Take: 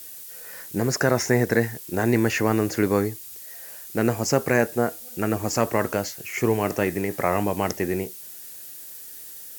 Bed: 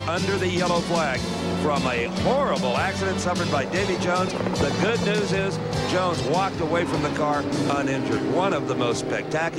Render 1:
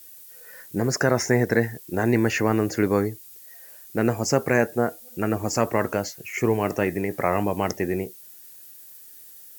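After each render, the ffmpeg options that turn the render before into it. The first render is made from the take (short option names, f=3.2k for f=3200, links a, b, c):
-af "afftdn=nr=8:nf=-40"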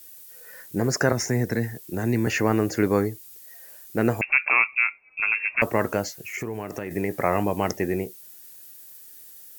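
-filter_complex "[0:a]asettb=1/sr,asplit=3[a][b][c];[a]atrim=end=1.124[d];[b]atrim=start=1.12:end=2.27,asetpts=PTS-STARTPTS,afade=t=in:d=0.004:c=qsin,afade=t=out:st=1.146:d=0.004:c=qsin,acrossover=split=280|3000[e][f][g];[f]acompressor=threshold=-35dB:ratio=2:attack=3.2:release=140:knee=2.83:detection=peak[h];[e][h][g]amix=inputs=3:normalize=0[i];[c]atrim=start=2.266[j];[d][i]acrossfade=d=0.004:c1=hsin:c2=qsin[k];[k][j]acrossfade=d=0.004:c1=qsin:c2=hsin,asettb=1/sr,asplit=3[l][m][n];[l]atrim=end=4.214[o];[m]atrim=start=4.21:end=5.62,asetpts=PTS-STARTPTS,afade=t=in:d=0.004:c=qsin,afade=t=out:st=1.406:d=0.004:c=qsin,lowpass=f=2.4k:t=q:w=0.5098,lowpass=f=2.4k:t=q:w=0.6013,lowpass=f=2.4k:t=q:w=0.9,lowpass=f=2.4k:t=q:w=2.563,afreqshift=-2800[p];[n]atrim=start=5.616[q];[o][p]acrossfade=d=0.004:c1=hsin:c2=qsin[r];[r][q]acrossfade=d=0.004:c1=qsin:c2=hsin,asettb=1/sr,asplit=3[s][t][u];[s]atrim=end=6.184[v];[t]atrim=start=6.18:end=6.91,asetpts=PTS-STARTPTS,afade=t=in:d=0.004:c=qsin,afade=t=out:st=0.726:d=0.004:c=qsin,acompressor=threshold=-27dB:ratio=6:attack=3.2:release=140:knee=1:detection=peak[w];[u]atrim=start=6.906[x];[v][w]acrossfade=d=0.004:c1=hsin:c2=qsin[y];[y][x]acrossfade=d=0.004:c1=qsin:c2=hsin"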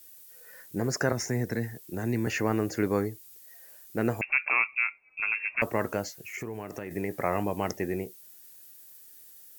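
-af "volume=-5.5dB"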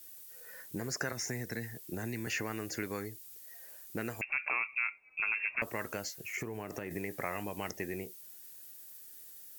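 -filter_complex "[0:a]acrossover=split=1700[a][b];[a]acompressor=threshold=-36dB:ratio=6[c];[b]alimiter=level_in=2dB:limit=-24dB:level=0:latency=1:release=79,volume=-2dB[d];[c][d]amix=inputs=2:normalize=0"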